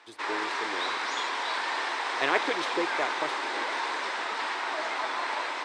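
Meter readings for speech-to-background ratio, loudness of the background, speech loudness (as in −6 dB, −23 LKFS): −3.0 dB, −30.0 LKFS, −33.0 LKFS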